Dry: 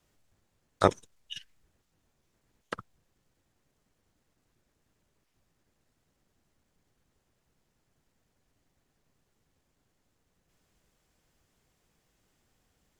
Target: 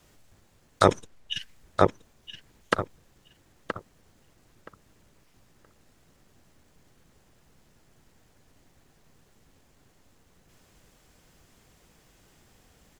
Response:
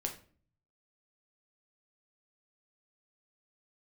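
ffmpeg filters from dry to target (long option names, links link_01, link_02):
-filter_complex "[0:a]asettb=1/sr,asplit=3[link_01][link_02][link_03];[link_01]atrim=end=0.864[link_04];[link_02]atrim=start=0.86:end=1.39,asetpts=PTS-STARTPTS,afade=type=in:duration=0.004:curve=qsin,afade=type=out:start_time=0.526:duration=0.004:curve=qsin,highshelf=frequency=3600:gain=-9.5[link_05];[link_03]atrim=start=1.386[link_06];[link_04][link_05]acrossfade=duration=0.004:curve1=hsin:curve2=qsin[link_07];[link_07][link_06]acrossfade=duration=0.004:curve1=qsin:curve2=hsin,asplit=2[link_08][link_09];[link_09]adelay=973,lowpass=frequency=2700:poles=1,volume=-7.5dB,asplit=2[link_10][link_11];[link_11]adelay=973,lowpass=frequency=2700:poles=1,volume=0.19,asplit=2[link_12][link_13];[link_13]adelay=973,lowpass=frequency=2700:poles=1,volume=0.19[link_14];[link_08][link_10][link_12][link_14]amix=inputs=4:normalize=0,alimiter=level_in=13.5dB:limit=-1dB:release=50:level=0:latency=1,volume=-1dB"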